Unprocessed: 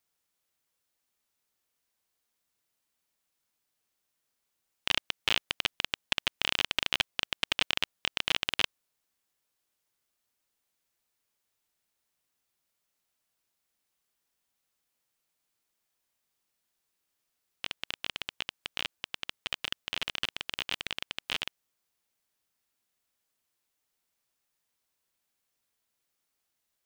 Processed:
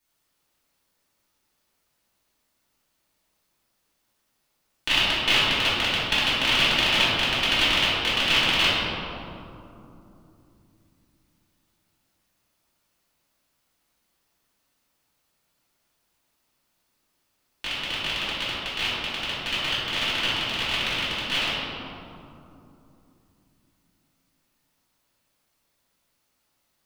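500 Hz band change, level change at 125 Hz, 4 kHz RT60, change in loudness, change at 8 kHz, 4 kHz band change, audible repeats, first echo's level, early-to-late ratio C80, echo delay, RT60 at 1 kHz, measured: +12.5 dB, +15.0 dB, 1.3 s, +9.5 dB, +7.5 dB, +9.5 dB, none, none, -1.0 dB, none, 2.7 s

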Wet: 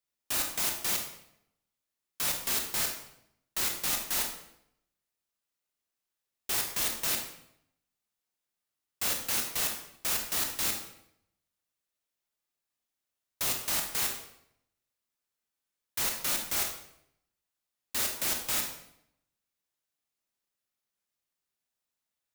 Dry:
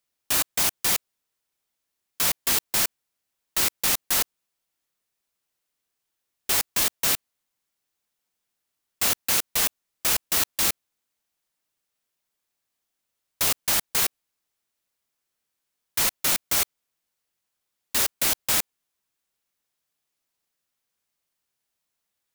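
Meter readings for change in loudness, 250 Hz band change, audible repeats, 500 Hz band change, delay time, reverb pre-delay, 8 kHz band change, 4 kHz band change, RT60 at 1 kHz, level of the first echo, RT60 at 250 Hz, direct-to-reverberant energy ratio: -7.0 dB, -6.0 dB, none, -6.0 dB, none, 22 ms, -7.0 dB, -6.5 dB, 0.70 s, none, 0.85 s, 2.0 dB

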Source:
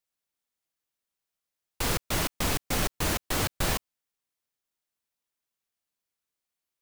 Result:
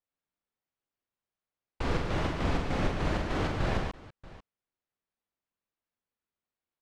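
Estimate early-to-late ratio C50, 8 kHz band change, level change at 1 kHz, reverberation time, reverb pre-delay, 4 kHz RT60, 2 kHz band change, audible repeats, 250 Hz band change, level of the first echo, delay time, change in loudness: none, -19.0 dB, -0.5 dB, none, none, none, -3.5 dB, 3, +2.0 dB, -5.5 dB, 46 ms, -3.0 dB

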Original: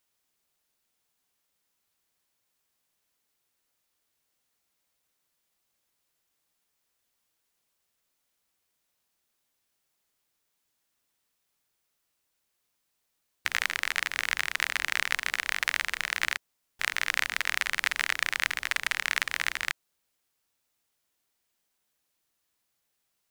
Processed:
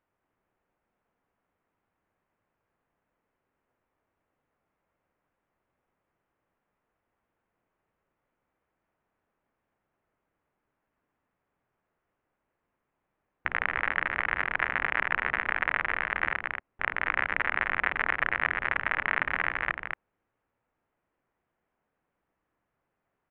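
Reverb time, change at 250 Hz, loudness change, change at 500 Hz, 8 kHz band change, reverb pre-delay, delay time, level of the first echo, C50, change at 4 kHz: none, +9.0 dB, 0.0 dB, +8.0 dB, under -40 dB, none, 0.224 s, -4.0 dB, none, -12.5 dB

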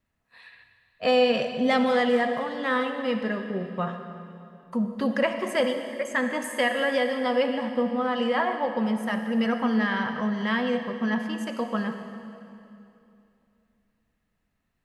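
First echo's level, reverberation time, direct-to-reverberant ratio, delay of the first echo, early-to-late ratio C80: none, 2.7 s, 6.5 dB, none, 7.5 dB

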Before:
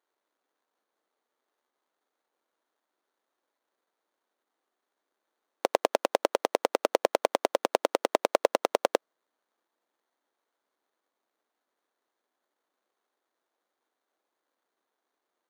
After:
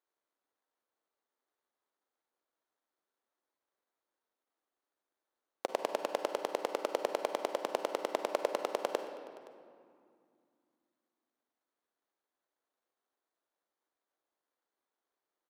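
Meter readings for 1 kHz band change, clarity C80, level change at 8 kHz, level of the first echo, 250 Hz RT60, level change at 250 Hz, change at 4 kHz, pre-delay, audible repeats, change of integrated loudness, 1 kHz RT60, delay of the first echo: -7.5 dB, 8.5 dB, -8.0 dB, -23.0 dB, 3.5 s, -7.5 dB, -7.5 dB, 33 ms, 1, -8.0 dB, 2.3 s, 0.52 s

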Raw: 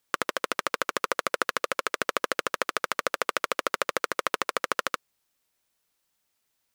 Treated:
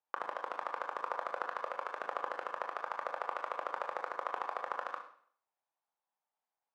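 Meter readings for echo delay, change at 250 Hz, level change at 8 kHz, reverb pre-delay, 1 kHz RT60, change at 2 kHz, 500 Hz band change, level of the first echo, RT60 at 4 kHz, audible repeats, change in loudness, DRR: none, -18.5 dB, under -25 dB, 22 ms, 0.55 s, -14.0 dB, -10.0 dB, none, 0.55 s, none, -10.5 dB, 3.0 dB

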